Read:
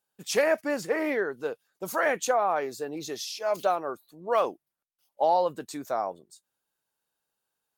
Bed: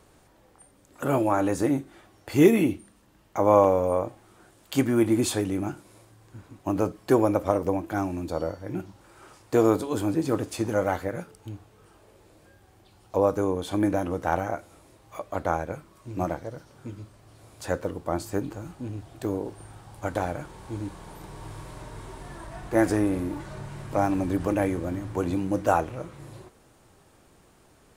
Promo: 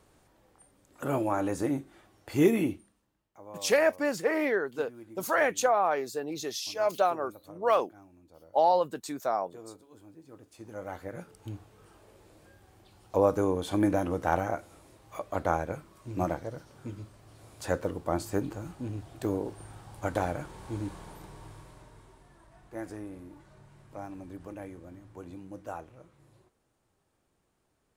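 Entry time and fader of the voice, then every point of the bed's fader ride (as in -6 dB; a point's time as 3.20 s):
3.35 s, 0.0 dB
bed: 2.68 s -5.5 dB
3.42 s -27 dB
10.26 s -27 dB
11.45 s -1.5 dB
20.96 s -1.5 dB
22.30 s -17.5 dB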